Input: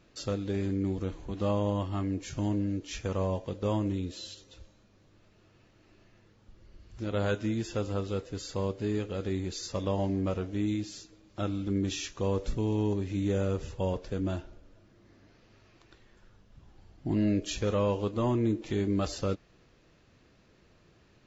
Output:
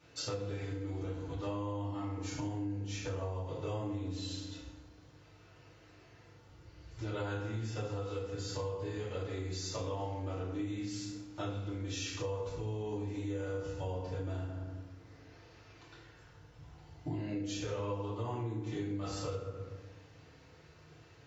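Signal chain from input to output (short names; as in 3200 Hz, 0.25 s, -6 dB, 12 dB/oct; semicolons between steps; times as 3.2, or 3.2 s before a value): bell 250 Hz -13.5 dB 0.79 oct; FDN reverb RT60 1 s, low-frequency decay 1.4×, high-frequency decay 0.6×, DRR -9.5 dB; compressor 5:1, threshold -31 dBFS, peak gain reduction 16.5 dB; HPF 77 Hz; gain -4.5 dB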